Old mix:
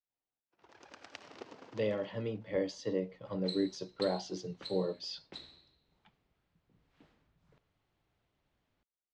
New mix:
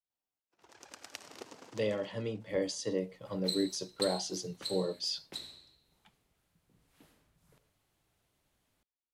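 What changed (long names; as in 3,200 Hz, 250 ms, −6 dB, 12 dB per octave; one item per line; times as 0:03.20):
first sound: send −6.0 dB
second sound: send +8.5 dB
master: remove high-frequency loss of the air 170 metres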